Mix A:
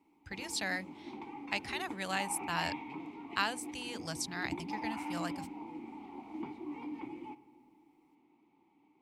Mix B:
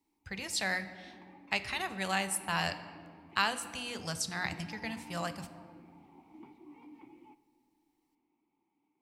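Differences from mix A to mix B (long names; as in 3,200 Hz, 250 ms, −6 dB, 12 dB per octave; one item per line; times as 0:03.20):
speech: send on
background −11.0 dB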